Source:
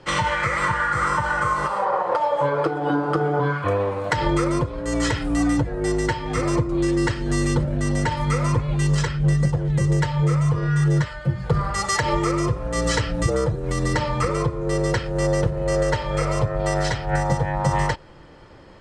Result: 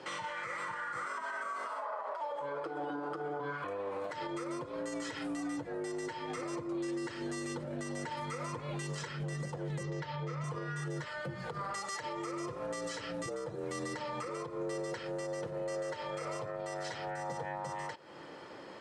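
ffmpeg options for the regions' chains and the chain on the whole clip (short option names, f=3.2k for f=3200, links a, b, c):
-filter_complex "[0:a]asettb=1/sr,asplit=3[a][b][c];[a]atrim=end=1.064[d];[b]atrim=start=1.06:end=2.21,asetpts=PTS-STARTPTS,afade=t=in:d=0.004:c=qsin,afade=t=out:st=1.146:d=0.004:c=qsin,highpass=f=210:w=0.5412,highpass=f=210:w=1.3066,afreqshift=73[e];[c]atrim=start=2.206[f];[d][e]acrossfade=d=0.004:c1=hsin:c2=qsin[g];[g][f]acrossfade=d=0.004:c1=qsin:c2=hsin,asettb=1/sr,asplit=3[h][i][j];[h]atrim=end=9.834[k];[i]atrim=start=9.83:end=10.44,asetpts=PTS-STARTPTS,afade=t=in:d=0.004:c=qsin,afade=t=out:st=0.606:d=0.004:c=qsin,lowpass=f=5.4k:w=0.5412,lowpass=f=5.4k:w=1.3066,asubboost=boost=9:cutoff=140[l];[j]atrim=start=10.436[m];[k][l]acrossfade=d=0.004:c1=hsin:c2=qsin[n];[n][m]acrossfade=d=0.004:c1=qsin:c2=hsin,highpass=260,acompressor=threshold=-34dB:ratio=5,alimiter=level_in=6.5dB:limit=-24dB:level=0:latency=1:release=69,volume=-6.5dB"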